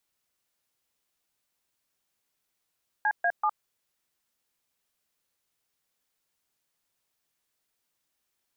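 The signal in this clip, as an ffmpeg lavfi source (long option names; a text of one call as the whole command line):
ffmpeg -f lavfi -i "aevalsrc='0.0596*clip(min(mod(t,0.192),0.061-mod(t,0.192))/0.002,0,1)*(eq(floor(t/0.192),0)*(sin(2*PI*852*mod(t,0.192))+sin(2*PI*1633*mod(t,0.192)))+eq(floor(t/0.192),1)*(sin(2*PI*697*mod(t,0.192))+sin(2*PI*1633*mod(t,0.192)))+eq(floor(t/0.192),2)*(sin(2*PI*852*mod(t,0.192))+sin(2*PI*1209*mod(t,0.192))))':duration=0.576:sample_rate=44100" out.wav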